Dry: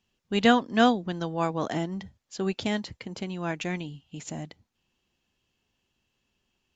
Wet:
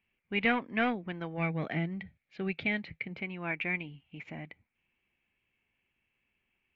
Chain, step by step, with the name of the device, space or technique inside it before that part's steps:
overdriven synthesiser ladder filter (soft clipping −16.5 dBFS, distortion −13 dB; transistor ladder low-pass 2,400 Hz, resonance 80%)
0:01.37–0:03.18: thirty-one-band graphic EQ 160 Hz +9 dB, 1,000 Hz −10 dB, 4,000 Hz +7 dB
level +5.5 dB

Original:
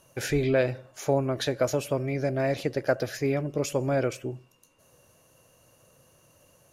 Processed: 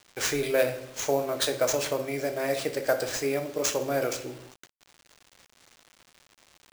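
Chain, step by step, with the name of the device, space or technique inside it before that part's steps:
bass and treble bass −15 dB, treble +9 dB
rectangular room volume 180 cubic metres, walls mixed, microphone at 0.48 metres
early 8-bit sampler (sample-rate reduction 13,000 Hz, jitter 0%; bit reduction 8 bits)

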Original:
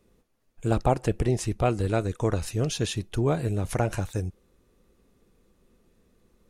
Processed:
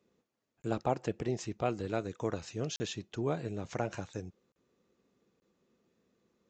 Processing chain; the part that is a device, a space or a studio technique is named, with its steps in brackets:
call with lost packets (high-pass filter 150 Hz 12 dB per octave; downsampling to 16,000 Hz; dropped packets of 20 ms bursts)
level −7.5 dB

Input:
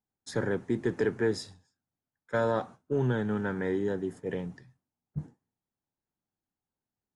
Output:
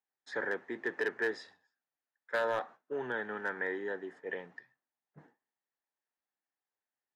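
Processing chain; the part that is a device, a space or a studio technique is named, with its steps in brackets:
megaphone (band-pass filter 530–3,200 Hz; parametric band 1,800 Hz +9 dB 0.31 octaves; hard clipping −22.5 dBFS, distortion −20 dB)
level −1.5 dB

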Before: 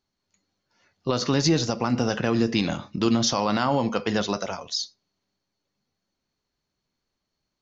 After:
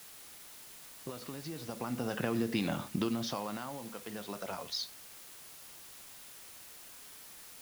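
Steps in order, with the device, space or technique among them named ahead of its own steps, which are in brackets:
medium wave at night (band-pass filter 100–3,800 Hz; downward compressor, threshold −28 dBFS, peak gain reduction 11.5 dB; amplitude tremolo 0.38 Hz, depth 77%; steady tone 10,000 Hz −61 dBFS; white noise bed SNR 12 dB)

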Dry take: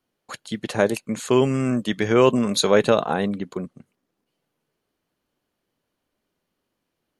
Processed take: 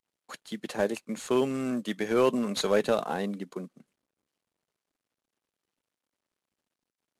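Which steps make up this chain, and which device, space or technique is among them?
early wireless headset (high-pass filter 170 Hz 24 dB per octave; variable-slope delta modulation 64 kbit/s)
level −7 dB

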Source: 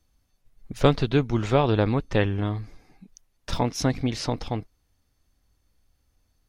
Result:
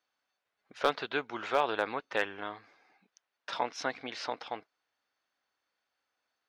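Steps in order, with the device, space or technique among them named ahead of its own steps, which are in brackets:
megaphone (band-pass filter 680–3,600 Hz; parametric band 1,500 Hz +5 dB 0.25 octaves; hard clipping −13 dBFS, distortion −19 dB)
level −2 dB

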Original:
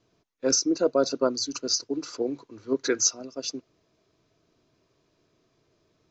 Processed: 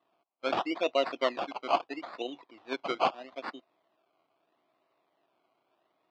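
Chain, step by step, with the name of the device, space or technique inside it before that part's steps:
circuit-bent sampling toy (sample-and-hold swept by an LFO 19×, swing 60% 0.77 Hz; loudspeaker in its box 420–4,100 Hz, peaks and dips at 440 Hz −8 dB, 720 Hz +7 dB, 1,100 Hz +4 dB, 1,600 Hz −6 dB)
level −2.5 dB

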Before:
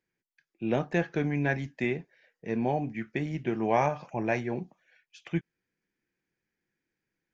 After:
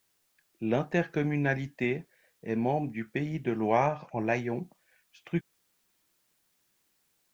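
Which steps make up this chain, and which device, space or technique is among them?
plain cassette with noise reduction switched in (one half of a high-frequency compander decoder only; tape wow and flutter 23 cents; white noise bed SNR 41 dB)
0:03.77–0:04.19: high-shelf EQ 6,000 Hz −9 dB

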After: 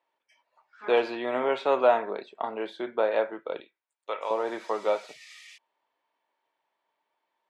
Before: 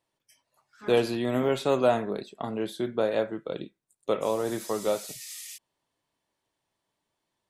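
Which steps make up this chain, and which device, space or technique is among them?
tin-can telephone (band-pass filter 530–2,500 Hz; hollow resonant body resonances 910/2,300 Hz, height 7 dB)
0:03.60–0:04.31: high-pass filter 1,300 Hz 6 dB per octave
level +4 dB

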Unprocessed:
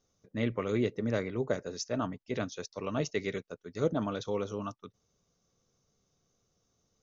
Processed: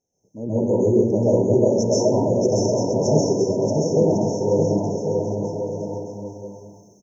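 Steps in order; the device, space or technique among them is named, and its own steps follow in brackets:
far laptop microphone (convolution reverb RT60 0.70 s, pre-delay 120 ms, DRR −8 dB; high-pass filter 130 Hz 6 dB per octave; automatic gain control gain up to 12.5 dB)
brick-wall band-stop 1,000–5,300 Hz
bouncing-ball delay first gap 630 ms, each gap 0.75×, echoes 5
level −4 dB

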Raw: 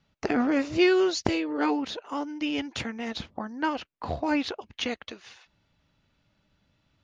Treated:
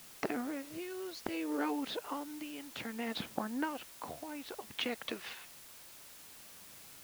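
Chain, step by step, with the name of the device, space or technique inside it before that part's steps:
medium wave at night (band-pass filter 160–3,800 Hz; downward compressor, threshold −39 dBFS, peak gain reduction 20 dB; amplitude tremolo 0.59 Hz, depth 70%; steady tone 10,000 Hz −73 dBFS; white noise bed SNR 13 dB)
level +6 dB

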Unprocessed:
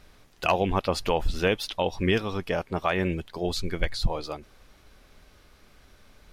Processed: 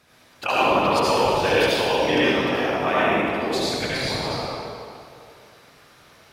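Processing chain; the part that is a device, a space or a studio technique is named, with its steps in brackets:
whispering ghost (random phases in short frames; high-pass filter 370 Hz 6 dB per octave; convolution reverb RT60 2.4 s, pre-delay 65 ms, DRR −8 dB)

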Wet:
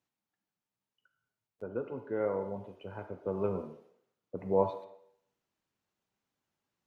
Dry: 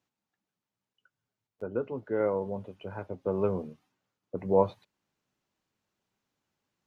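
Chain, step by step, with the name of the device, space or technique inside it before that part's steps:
filtered reverb send (on a send: high-pass filter 350 Hz 12 dB per octave + low-pass filter 3,000 Hz + convolution reverb RT60 0.70 s, pre-delay 36 ms, DRR 6.5 dB)
on the sum: level −4.5 dB

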